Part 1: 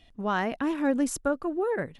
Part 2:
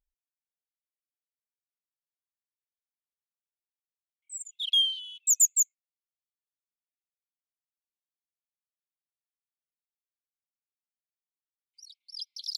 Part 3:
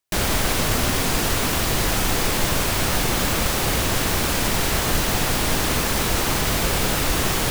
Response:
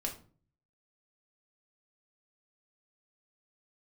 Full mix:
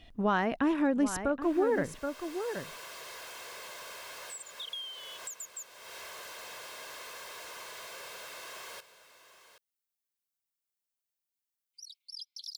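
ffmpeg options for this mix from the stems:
-filter_complex "[0:a]volume=3dB,asplit=3[link_01][link_02][link_03];[link_02]volume=-11dB[link_04];[1:a]aemphasis=mode=production:type=75kf,acompressor=threshold=-18dB:ratio=6,volume=-3dB[link_05];[2:a]highpass=610,aecho=1:1:1.9:0.6,asoftclip=type=tanh:threshold=-21dB,adelay=1300,volume=-16.5dB,asplit=2[link_06][link_07];[link_07]volume=-14.5dB[link_08];[link_03]apad=whole_len=388277[link_09];[link_06][link_09]sidechaincompress=threshold=-29dB:ratio=8:attack=5.4:release=1430[link_10];[link_05][link_10]amix=inputs=2:normalize=0,acompressor=threshold=-40dB:ratio=4,volume=0dB[link_11];[link_04][link_08]amix=inputs=2:normalize=0,aecho=0:1:775:1[link_12];[link_01][link_11][link_12]amix=inputs=3:normalize=0,highshelf=frequency=7100:gain=-7.5,alimiter=limit=-18.5dB:level=0:latency=1:release=367"

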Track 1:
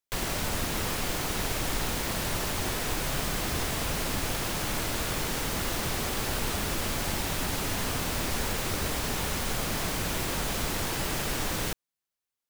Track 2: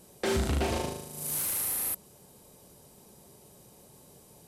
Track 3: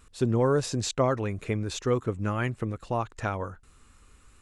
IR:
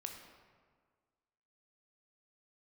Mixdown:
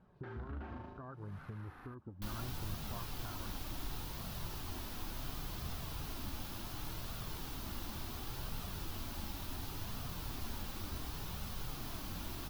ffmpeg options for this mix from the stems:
-filter_complex "[0:a]flanger=delay=6.5:depth=8.1:regen=-76:speed=0.62:shape=sinusoidal,adelay=2100,volume=-1.5dB[link_01];[1:a]volume=-1.5dB[link_02];[2:a]afwtdn=0.0316,acompressor=threshold=-25dB:ratio=6,volume=-4.5dB[link_03];[link_02][link_03]amix=inputs=2:normalize=0,lowpass=frequency=1600:width_type=q:width=2.9,alimiter=level_in=5dB:limit=-24dB:level=0:latency=1:release=395,volume=-5dB,volume=0dB[link_04];[link_01][link_04]amix=inputs=2:normalize=0,equalizer=frequency=500:width_type=o:width=1:gain=-11,equalizer=frequency=2000:width_type=o:width=1:gain=-10,equalizer=frequency=8000:width_type=o:width=1:gain=-11,flanger=delay=1.4:depth=2.4:regen=-51:speed=0.7:shape=triangular"

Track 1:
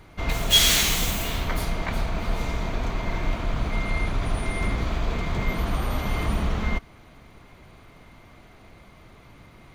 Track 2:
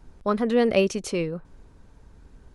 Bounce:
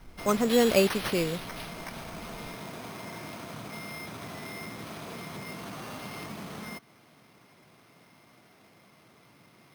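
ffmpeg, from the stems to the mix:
ffmpeg -i stem1.wav -i stem2.wav -filter_complex "[0:a]highpass=frequency=130:width=0.5412,highpass=frequency=130:width=1.3066,acompressor=threshold=-30dB:ratio=5,volume=-7dB[link_01];[1:a]volume=-2dB[link_02];[link_01][link_02]amix=inputs=2:normalize=0,highshelf=frequency=4300:gain=6,acrusher=samples=6:mix=1:aa=0.000001" out.wav

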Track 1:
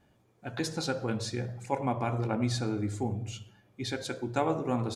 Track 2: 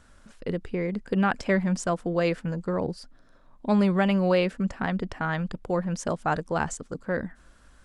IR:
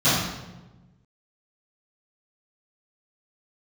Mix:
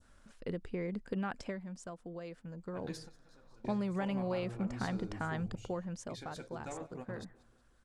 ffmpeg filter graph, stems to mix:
-filter_complex "[0:a]asoftclip=type=tanh:threshold=-22dB,adelay=2300,volume=-13dB,asplit=2[link_01][link_02];[link_02]volume=-21dB[link_03];[1:a]acompressor=threshold=-25dB:ratio=6,adynamicequalizer=threshold=0.00501:dfrequency=2000:dqfactor=0.83:tfrequency=2000:tqfactor=0.83:attack=5:release=100:ratio=0.375:range=2:mode=cutabove:tftype=bell,volume=1.5dB,afade=type=out:start_time=1.37:duration=0.27:silence=0.398107,afade=type=in:start_time=2.5:duration=0.77:silence=0.354813,afade=type=out:start_time=5.53:duration=0.61:silence=0.421697,asplit=2[link_04][link_05];[link_05]apad=whole_len=319769[link_06];[link_01][link_06]sidechaingate=range=-33dB:threshold=-53dB:ratio=16:detection=peak[link_07];[link_03]aecho=0:1:185|370|555|740|925|1110|1295:1|0.5|0.25|0.125|0.0625|0.0312|0.0156[link_08];[link_07][link_04][link_08]amix=inputs=3:normalize=0"

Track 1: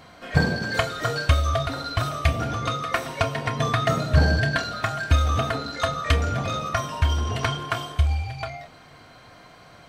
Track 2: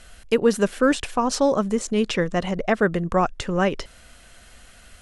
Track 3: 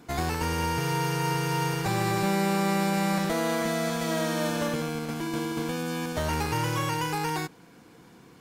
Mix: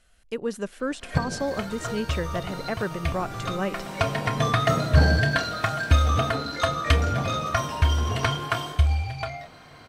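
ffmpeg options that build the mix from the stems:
ffmpeg -i stem1.wav -i stem2.wav -i stem3.wav -filter_complex "[0:a]bandreject=frequency=7100:width=21,adelay=800,volume=0.5dB[link_01];[1:a]dynaudnorm=framelen=110:gausssize=5:maxgain=11.5dB,volume=-16dB,asplit=2[link_02][link_03];[2:a]adelay=1300,volume=-13.5dB[link_04];[link_03]apad=whole_len=471234[link_05];[link_01][link_05]sidechaincompress=threshold=-37dB:ratio=8:attack=24:release=390[link_06];[link_06][link_02][link_04]amix=inputs=3:normalize=0" out.wav

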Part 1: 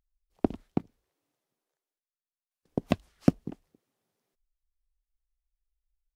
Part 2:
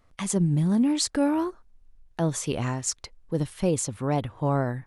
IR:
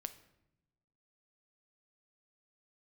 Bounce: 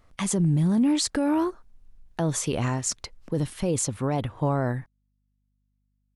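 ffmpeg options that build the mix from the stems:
-filter_complex "[0:a]acompressor=threshold=-30dB:ratio=6,aeval=exprs='val(0)+0.00178*(sin(2*PI*50*n/s)+sin(2*PI*2*50*n/s)/2+sin(2*PI*3*50*n/s)/3+sin(2*PI*4*50*n/s)/4+sin(2*PI*5*50*n/s)/5)':channel_layout=same,volume=-17dB[link_01];[1:a]volume=3dB[link_02];[link_01][link_02]amix=inputs=2:normalize=0,alimiter=limit=-16dB:level=0:latency=1:release=15"

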